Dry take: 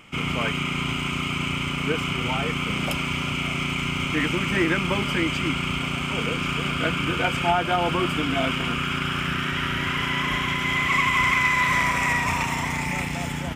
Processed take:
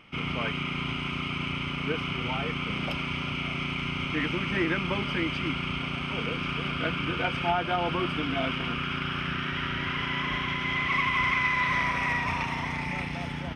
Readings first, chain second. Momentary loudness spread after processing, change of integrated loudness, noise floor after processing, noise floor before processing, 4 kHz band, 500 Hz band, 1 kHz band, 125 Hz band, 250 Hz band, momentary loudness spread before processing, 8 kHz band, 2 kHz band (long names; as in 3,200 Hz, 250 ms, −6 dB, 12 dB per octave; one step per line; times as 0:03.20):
6 LU, −5.0 dB, −34 dBFS, −28 dBFS, −5.5 dB, −5.0 dB, −5.0 dB, −5.0 dB, −5.0 dB, 6 LU, below −15 dB, −5.0 dB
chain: Savitzky-Golay smoothing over 15 samples
level −5 dB